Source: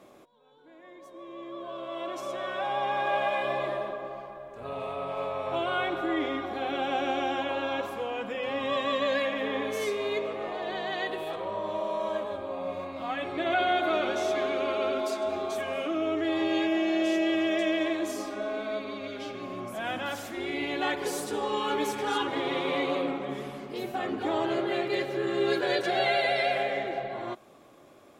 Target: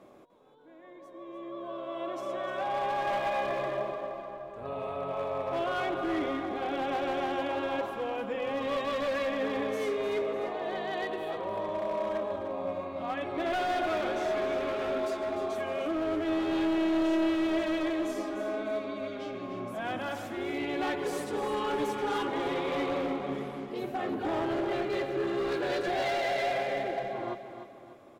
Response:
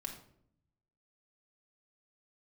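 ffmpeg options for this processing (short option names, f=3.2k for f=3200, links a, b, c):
-filter_complex "[0:a]highshelf=f=2.2k:g=-8.5,volume=27dB,asoftclip=hard,volume=-27dB,asplit=2[a][b];[b]aecho=0:1:300|600|900|1200:0.316|0.133|0.0558|0.0234[c];[a][c]amix=inputs=2:normalize=0"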